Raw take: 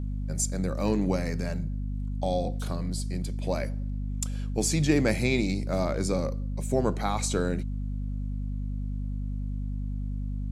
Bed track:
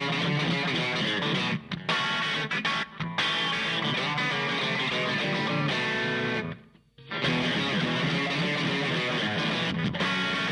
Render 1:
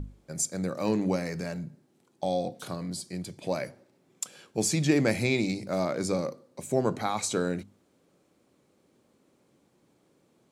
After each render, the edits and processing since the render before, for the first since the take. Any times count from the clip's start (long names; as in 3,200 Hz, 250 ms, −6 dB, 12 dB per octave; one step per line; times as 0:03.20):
mains-hum notches 50/100/150/200/250 Hz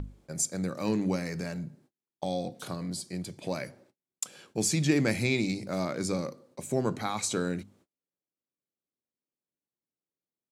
noise gate −59 dBFS, range −34 dB
dynamic equaliser 630 Hz, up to −5 dB, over −38 dBFS, Q 1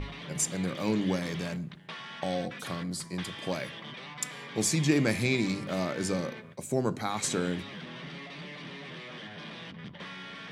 mix in bed track −15.5 dB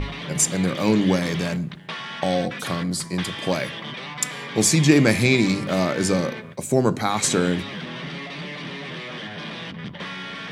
level +9.5 dB